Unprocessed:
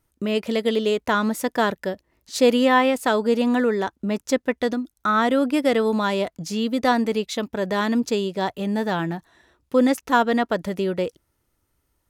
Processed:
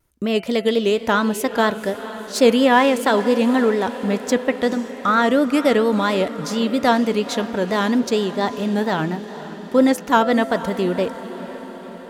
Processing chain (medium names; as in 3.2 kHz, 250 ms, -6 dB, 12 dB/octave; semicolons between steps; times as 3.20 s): vibrato 4.3 Hz 97 cents; de-hum 167.9 Hz, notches 19; on a send: echo that smears into a reverb 487 ms, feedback 65%, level -14 dB; on the sum: trim +3 dB